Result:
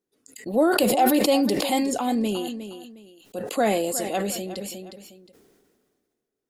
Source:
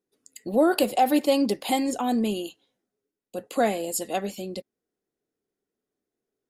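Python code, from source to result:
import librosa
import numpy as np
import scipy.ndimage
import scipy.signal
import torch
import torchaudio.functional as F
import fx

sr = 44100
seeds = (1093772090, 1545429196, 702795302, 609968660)

y = fx.echo_feedback(x, sr, ms=360, feedback_pct=18, wet_db=-14.0)
y = fx.sustainer(y, sr, db_per_s=31.0)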